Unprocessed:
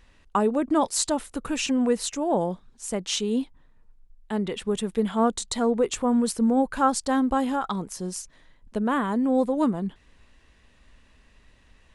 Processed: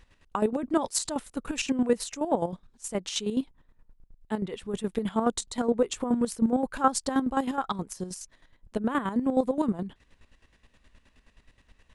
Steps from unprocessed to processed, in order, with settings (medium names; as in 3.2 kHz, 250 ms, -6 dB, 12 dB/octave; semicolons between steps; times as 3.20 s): square tremolo 9.5 Hz, depth 65%, duty 35%